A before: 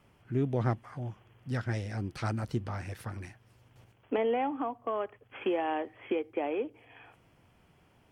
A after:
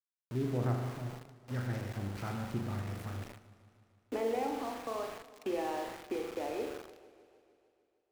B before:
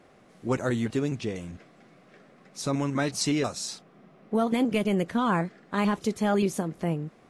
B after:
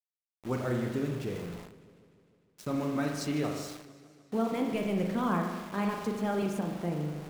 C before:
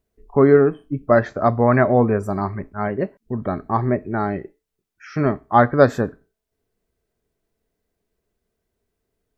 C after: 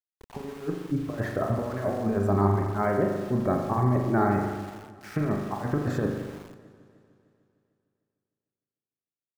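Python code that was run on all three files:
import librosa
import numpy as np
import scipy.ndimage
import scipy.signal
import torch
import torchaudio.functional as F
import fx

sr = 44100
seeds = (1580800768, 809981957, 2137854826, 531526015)

y = fx.high_shelf(x, sr, hz=2500.0, db=-6.5)
y = fx.over_compress(y, sr, threshold_db=-21.0, ratio=-0.5)
y = fx.rev_spring(y, sr, rt60_s=1.3, pass_ms=(40,), chirp_ms=35, drr_db=2.0)
y = np.where(np.abs(y) >= 10.0 ** (-36.0 / 20.0), y, 0.0)
y = fx.echo_warbled(y, sr, ms=151, feedback_pct=68, rate_hz=2.8, cents=128, wet_db=-18.0)
y = F.gain(torch.from_numpy(y), -6.0).numpy()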